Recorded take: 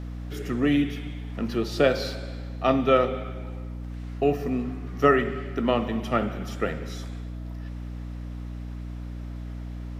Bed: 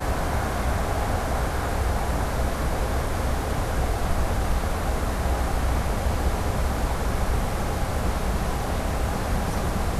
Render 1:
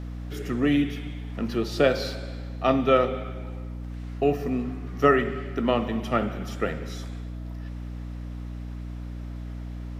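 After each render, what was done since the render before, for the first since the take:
no processing that can be heard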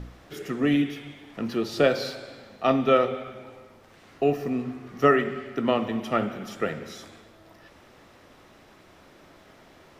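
hum removal 60 Hz, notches 5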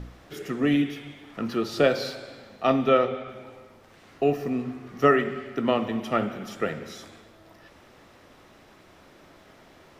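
0:01.23–0:01.79: parametric band 1,300 Hz +6 dB 0.32 octaves
0:02.88–0:03.29: high-frequency loss of the air 53 metres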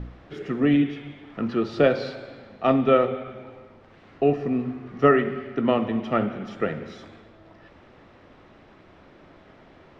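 low-pass filter 3,300 Hz 12 dB per octave
low-shelf EQ 490 Hz +4 dB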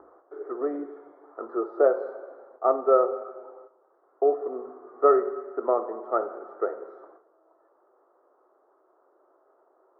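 noise gate −46 dBFS, range −9 dB
elliptic band-pass filter 370–1,300 Hz, stop band 40 dB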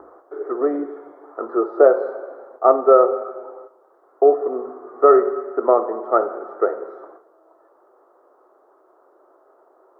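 level +8.5 dB
brickwall limiter −1 dBFS, peak gain reduction 3 dB

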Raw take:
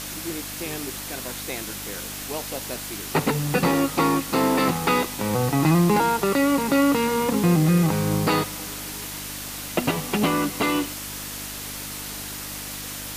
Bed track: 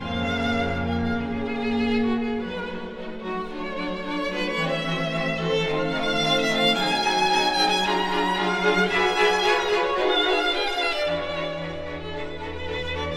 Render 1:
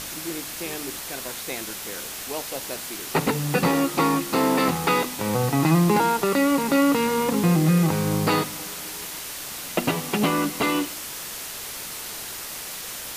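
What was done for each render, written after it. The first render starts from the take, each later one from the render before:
hum removal 50 Hz, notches 7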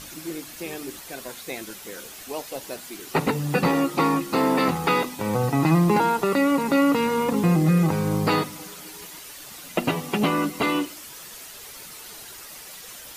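broadband denoise 9 dB, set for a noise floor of −35 dBFS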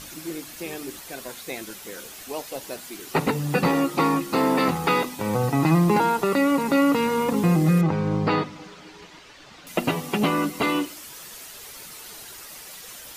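0:07.81–0:09.67: high-frequency loss of the air 160 metres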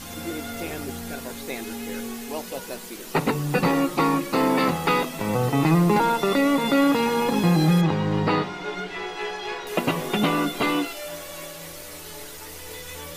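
mix in bed track −11 dB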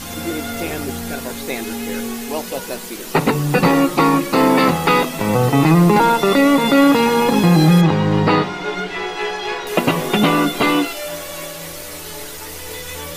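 level +7.5 dB
brickwall limiter −3 dBFS, peak gain reduction 2 dB

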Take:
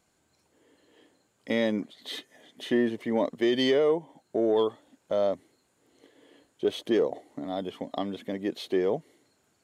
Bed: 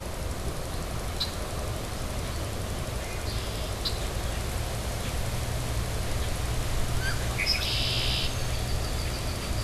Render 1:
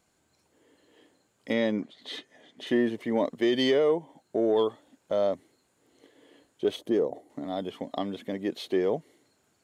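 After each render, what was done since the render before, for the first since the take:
0:01.53–0:02.67: high-frequency loss of the air 58 metres
0:06.76–0:07.30: parametric band 2,900 Hz −9.5 dB 2.8 octaves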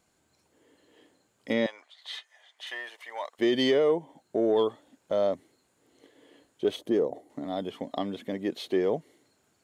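0:01.66–0:03.39: high-pass filter 790 Hz 24 dB per octave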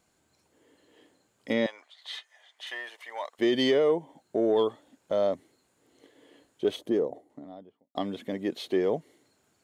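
0:06.71–0:07.95: fade out and dull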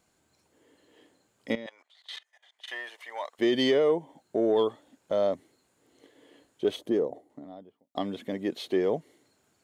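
0:01.55–0:02.68: output level in coarse steps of 20 dB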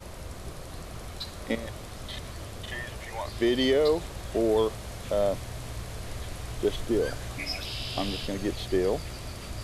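mix in bed −7.5 dB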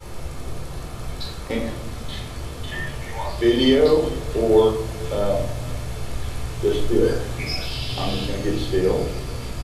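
single-tap delay 447 ms −21 dB
rectangular room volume 1,000 cubic metres, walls furnished, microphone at 4.2 metres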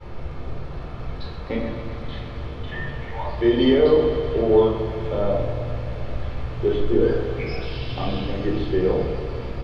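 high-frequency loss of the air 300 metres
feedback echo with a high-pass in the loop 129 ms, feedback 78%, high-pass 170 Hz, level −10.5 dB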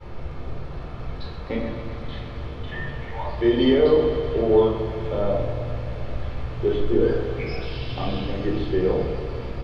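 level −1 dB

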